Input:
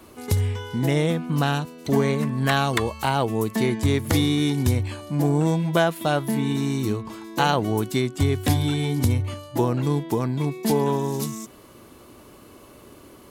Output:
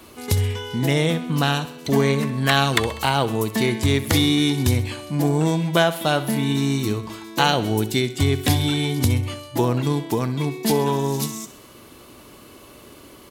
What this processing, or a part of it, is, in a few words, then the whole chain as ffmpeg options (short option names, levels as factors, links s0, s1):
presence and air boost: -filter_complex "[0:a]asettb=1/sr,asplit=3[s0][s1][s2];[s0]atrim=end=7.494[s3];[s1]atrim=start=7.49:end=8.18,asetpts=PTS-STARTPTS,afade=t=in:d=0.004:c=qsin,afade=t=out:st=0.686:d=0.004:c=qsin,equalizer=f=1100:t=o:w=0.33:g=-10[s4];[s2]atrim=start=8.176[s5];[s3][s4]acrossfade=d=0.004:c1=hsin:c2=qsin[s6];[s6][s5]acrossfade=d=0.004:c1=qsin:c2=hsin,equalizer=f=3400:t=o:w=1.9:g=5.5,highshelf=f=9900:g=4.5,aecho=1:1:65|130|195|260|325:0.178|0.096|0.0519|0.028|0.0151,volume=1.12"